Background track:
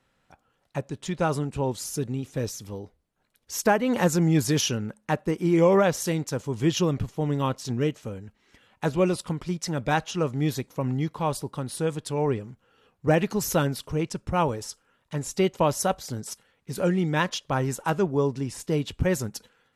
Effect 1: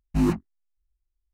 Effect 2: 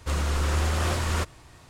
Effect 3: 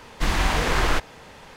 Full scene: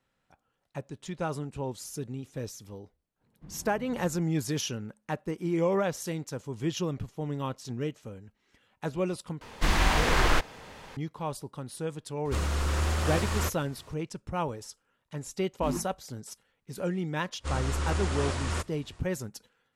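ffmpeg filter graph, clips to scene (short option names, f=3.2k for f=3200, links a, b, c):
-filter_complex "[3:a]asplit=2[a][b];[2:a]asplit=2[c][d];[0:a]volume=-7.5dB[e];[a]bandpass=f=160:t=q:w=2:csg=0[f];[d]aresample=22050,aresample=44100[g];[e]asplit=2[h][i];[h]atrim=end=9.414[j];[b]atrim=end=1.56,asetpts=PTS-STARTPTS,volume=-2dB[k];[i]atrim=start=10.966[l];[f]atrim=end=1.56,asetpts=PTS-STARTPTS,volume=-14dB,afade=t=in:d=0.004:c=hsin,afade=t=out:st=1.556:d=0.004:c=hsin,adelay=141561S[m];[c]atrim=end=1.69,asetpts=PTS-STARTPTS,volume=-3dB,afade=t=in:d=0.004:c=hsin,afade=t=out:st=1.686:d=0.004:c=hsin,adelay=12250[n];[1:a]atrim=end=1.33,asetpts=PTS-STARTPTS,volume=-11.5dB,afade=t=in:d=0.004:c=hsin,afade=t=out:st=1.326:d=0.004:c=hsin,adelay=15470[o];[g]atrim=end=1.69,asetpts=PTS-STARTPTS,volume=-5dB,afade=t=in:d=0.1,afade=t=out:st=1.59:d=0.1,adelay=17380[p];[j][k]acrossfade=d=0.004:c1=hsin:c2=hsin[q];[q][l]acrossfade=d=0.004:c1=hsin:c2=hsin[r];[r][m][n][o][p]amix=inputs=5:normalize=0"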